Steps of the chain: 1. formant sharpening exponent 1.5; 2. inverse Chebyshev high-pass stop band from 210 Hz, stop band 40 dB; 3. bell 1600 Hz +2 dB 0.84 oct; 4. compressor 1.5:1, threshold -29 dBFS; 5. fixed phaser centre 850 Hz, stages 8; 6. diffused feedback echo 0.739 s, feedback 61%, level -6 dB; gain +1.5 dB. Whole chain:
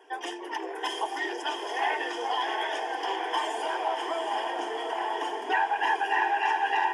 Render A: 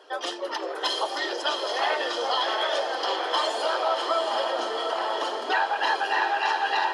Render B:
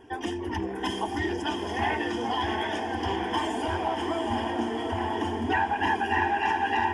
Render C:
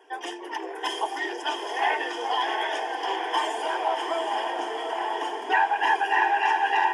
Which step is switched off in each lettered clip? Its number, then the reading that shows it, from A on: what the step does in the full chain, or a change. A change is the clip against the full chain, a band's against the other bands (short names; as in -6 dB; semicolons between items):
5, 4 kHz band +5.5 dB; 2, 250 Hz band +11.5 dB; 4, loudness change +3.0 LU